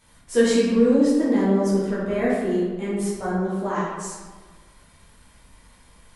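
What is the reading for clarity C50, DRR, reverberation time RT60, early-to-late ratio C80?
-1.0 dB, -9.5 dB, 1.4 s, 2.0 dB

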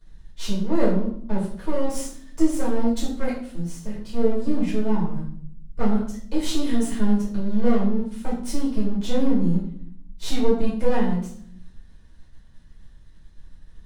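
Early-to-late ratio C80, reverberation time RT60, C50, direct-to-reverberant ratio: 8.0 dB, 0.60 s, 5.0 dB, -7.5 dB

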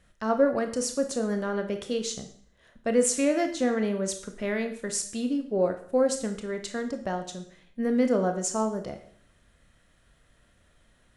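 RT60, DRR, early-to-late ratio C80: 0.55 s, 6.0 dB, 13.5 dB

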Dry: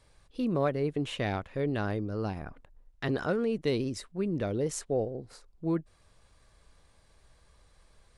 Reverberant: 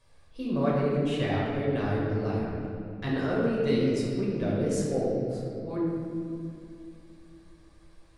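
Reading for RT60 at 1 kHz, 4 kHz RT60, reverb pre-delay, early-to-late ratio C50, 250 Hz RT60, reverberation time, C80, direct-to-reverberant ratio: 2.1 s, 1.5 s, 5 ms, -1.5 dB, 3.7 s, 2.4 s, 0.5 dB, -6.0 dB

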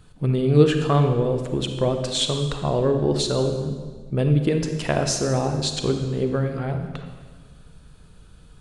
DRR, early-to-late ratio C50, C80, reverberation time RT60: 5.5 dB, 6.5 dB, 8.0 dB, 1.5 s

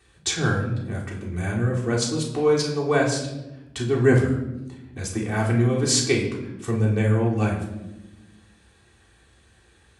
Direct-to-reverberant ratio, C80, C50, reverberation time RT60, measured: -4.0 dB, 9.5 dB, 6.0 dB, 1.0 s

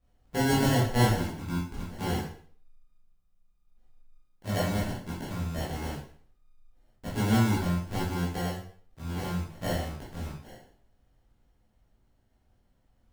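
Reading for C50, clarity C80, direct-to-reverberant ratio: 2.5 dB, 8.0 dB, -8.5 dB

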